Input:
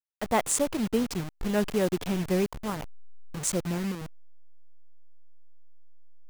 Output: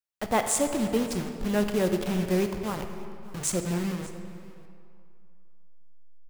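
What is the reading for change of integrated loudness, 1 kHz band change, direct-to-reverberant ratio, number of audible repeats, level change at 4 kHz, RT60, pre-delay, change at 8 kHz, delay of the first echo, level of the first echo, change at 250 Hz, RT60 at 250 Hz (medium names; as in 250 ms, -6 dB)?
+1.0 dB, +1.0 dB, 6.0 dB, 1, +0.5 dB, 2.5 s, 10 ms, +0.5 dB, 591 ms, -21.0 dB, +1.0 dB, 2.3 s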